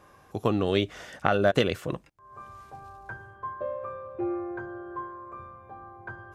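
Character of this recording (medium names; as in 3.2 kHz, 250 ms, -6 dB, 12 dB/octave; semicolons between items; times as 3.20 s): noise floor -57 dBFS; spectral tilt -4.5 dB/octave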